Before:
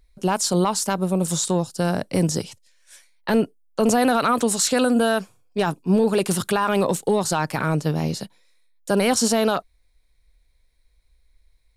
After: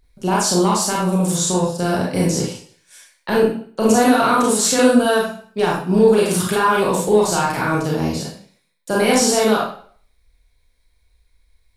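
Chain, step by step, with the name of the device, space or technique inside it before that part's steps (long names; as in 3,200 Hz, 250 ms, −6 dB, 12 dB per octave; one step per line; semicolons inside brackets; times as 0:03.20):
bathroom (convolution reverb RT60 0.50 s, pre-delay 28 ms, DRR −4.5 dB)
level −1 dB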